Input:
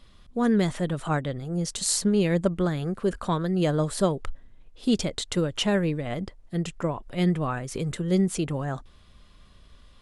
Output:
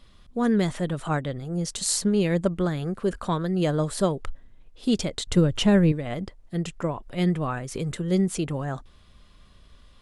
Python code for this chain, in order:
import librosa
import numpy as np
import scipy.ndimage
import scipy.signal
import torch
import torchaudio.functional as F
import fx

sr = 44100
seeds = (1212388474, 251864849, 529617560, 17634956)

y = fx.low_shelf(x, sr, hz=250.0, db=11.5, at=(5.27, 5.92))